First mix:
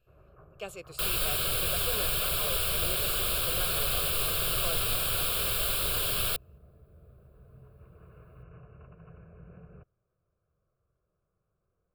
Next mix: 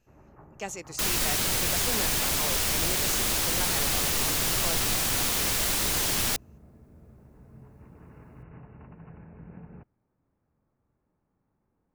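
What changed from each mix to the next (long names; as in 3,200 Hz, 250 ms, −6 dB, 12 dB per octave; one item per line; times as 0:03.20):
master: remove phaser with its sweep stopped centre 1,300 Hz, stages 8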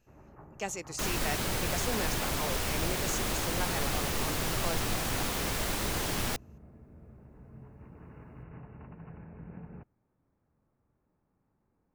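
second sound: add high-shelf EQ 2,400 Hz −10.5 dB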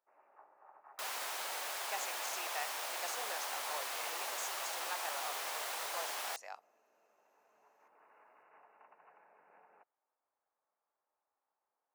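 speech: entry +1.30 s
master: add four-pole ladder high-pass 580 Hz, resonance 30%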